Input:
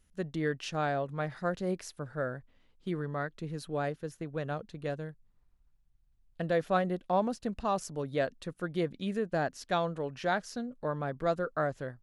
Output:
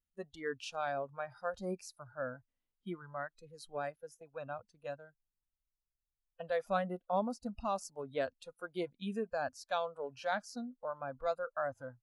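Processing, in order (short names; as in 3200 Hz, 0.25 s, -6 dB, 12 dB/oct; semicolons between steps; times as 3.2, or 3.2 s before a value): spectral noise reduction 20 dB; gain -4.5 dB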